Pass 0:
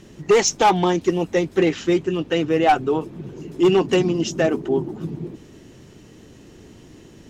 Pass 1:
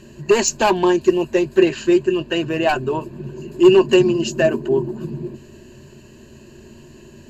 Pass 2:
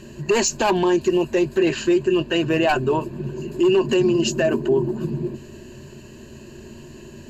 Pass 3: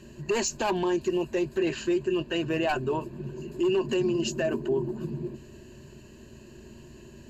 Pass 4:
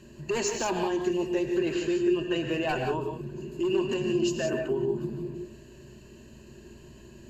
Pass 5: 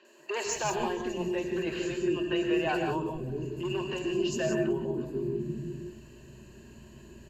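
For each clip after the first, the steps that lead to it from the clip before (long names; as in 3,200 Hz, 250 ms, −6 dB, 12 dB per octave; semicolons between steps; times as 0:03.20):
EQ curve with evenly spaced ripples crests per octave 1.4, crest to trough 13 dB
brickwall limiter −13 dBFS, peak gain reduction 11 dB; level +2.5 dB
mains hum 60 Hz, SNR 28 dB; level −8 dB
reverb whose tail is shaped and stops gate 200 ms rising, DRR 3.5 dB; level −2.5 dB
three-band delay without the direct sound mids, highs, lows 50/450 ms, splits 400/4,600 Hz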